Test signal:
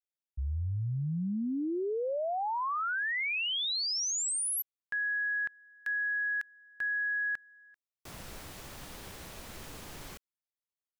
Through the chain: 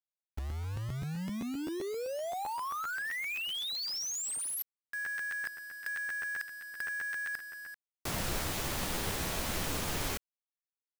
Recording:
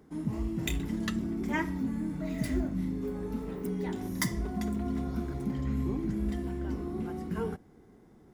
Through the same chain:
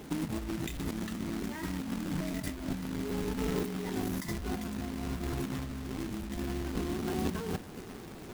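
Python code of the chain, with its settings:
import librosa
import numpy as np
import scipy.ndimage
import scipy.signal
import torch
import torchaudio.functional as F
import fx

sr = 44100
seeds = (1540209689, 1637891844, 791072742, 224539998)

y = fx.over_compress(x, sr, threshold_db=-40.0, ratio=-1.0)
y = fx.quant_companded(y, sr, bits=4)
y = fx.buffer_crackle(y, sr, first_s=0.49, period_s=0.13, block=512, kind='repeat')
y = y * librosa.db_to_amplitude(4.0)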